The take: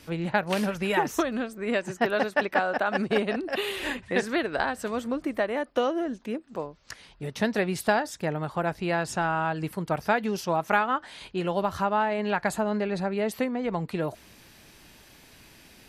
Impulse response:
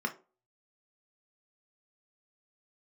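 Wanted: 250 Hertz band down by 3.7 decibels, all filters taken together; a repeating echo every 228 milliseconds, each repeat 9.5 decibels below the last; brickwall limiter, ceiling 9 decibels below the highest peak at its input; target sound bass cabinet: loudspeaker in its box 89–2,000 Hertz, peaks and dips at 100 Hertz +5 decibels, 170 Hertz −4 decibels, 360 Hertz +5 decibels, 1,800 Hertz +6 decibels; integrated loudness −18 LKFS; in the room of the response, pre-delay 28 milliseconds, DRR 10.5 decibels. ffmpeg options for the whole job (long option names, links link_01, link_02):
-filter_complex "[0:a]equalizer=frequency=250:width_type=o:gain=-6.5,alimiter=limit=-18.5dB:level=0:latency=1,aecho=1:1:228|456|684|912:0.335|0.111|0.0365|0.012,asplit=2[link_01][link_02];[1:a]atrim=start_sample=2205,adelay=28[link_03];[link_02][link_03]afir=irnorm=-1:irlink=0,volume=-16dB[link_04];[link_01][link_04]amix=inputs=2:normalize=0,highpass=frequency=89:width=0.5412,highpass=frequency=89:width=1.3066,equalizer=frequency=100:width_type=q:width=4:gain=5,equalizer=frequency=170:width_type=q:width=4:gain=-4,equalizer=frequency=360:width_type=q:width=4:gain=5,equalizer=frequency=1800:width_type=q:width=4:gain=6,lowpass=frequency=2000:width=0.5412,lowpass=frequency=2000:width=1.3066,volume=11dB"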